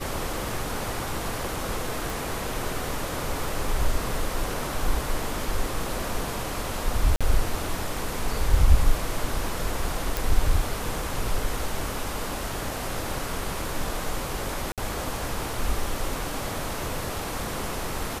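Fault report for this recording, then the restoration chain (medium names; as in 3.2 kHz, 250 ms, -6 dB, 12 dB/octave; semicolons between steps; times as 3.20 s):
2.10 s: pop
7.16–7.21 s: dropout 46 ms
10.17 s: pop
14.72–14.78 s: dropout 57 ms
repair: de-click; interpolate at 7.16 s, 46 ms; interpolate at 14.72 s, 57 ms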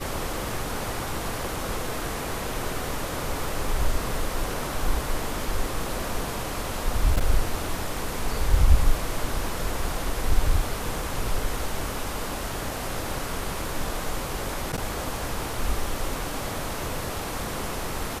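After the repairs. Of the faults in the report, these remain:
nothing left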